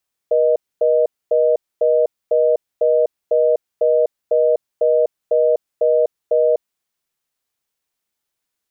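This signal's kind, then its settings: call progress tone reorder tone, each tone -14.5 dBFS 6.33 s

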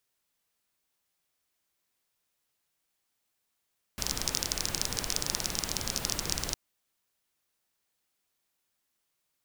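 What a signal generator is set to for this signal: rain from filtered ticks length 2.56 s, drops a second 23, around 5500 Hz, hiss -2 dB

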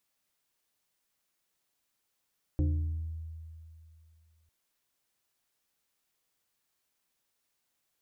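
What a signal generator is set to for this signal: FM tone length 1.90 s, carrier 80.5 Hz, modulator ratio 2.72, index 0.91, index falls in 1.05 s exponential, decay 2.59 s, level -23 dB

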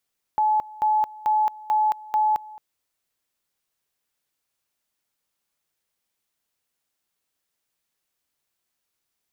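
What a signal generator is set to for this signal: two-level tone 857 Hz -17 dBFS, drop 21 dB, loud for 0.22 s, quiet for 0.22 s, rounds 5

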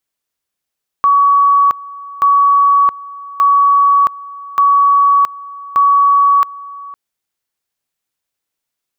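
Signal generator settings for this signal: two-level tone 1130 Hz -6.5 dBFS, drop 20.5 dB, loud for 0.67 s, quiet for 0.51 s, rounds 5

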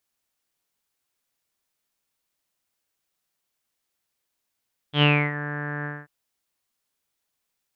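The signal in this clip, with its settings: synth note saw D3 24 dB/oct, low-pass 1700 Hz, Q 11, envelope 1 oct, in 0.45 s, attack 93 ms, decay 0.29 s, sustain -14.5 dB, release 0.22 s, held 0.92 s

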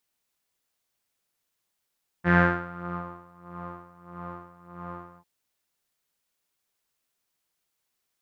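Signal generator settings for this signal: synth patch with tremolo F3, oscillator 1 saw, sub -14 dB, filter lowpass, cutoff 860 Hz, Q 5.7, filter envelope 1 oct, filter decay 0.83 s, filter sustain 45%, attack 36 ms, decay 0.76 s, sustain -20.5 dB, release 0.06 s, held 2.94 s, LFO 1.6 Hz, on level 16.5 dB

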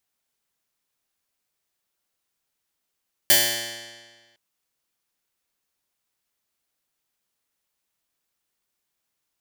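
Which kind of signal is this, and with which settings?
plucked string A#2, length 1.06 s, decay 1.53 s, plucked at 0.09, bright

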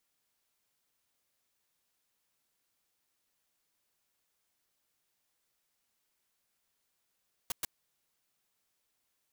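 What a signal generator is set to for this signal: noise bursts white, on 0.02 s, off 0.11 s, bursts 2, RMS -33.5 dBFS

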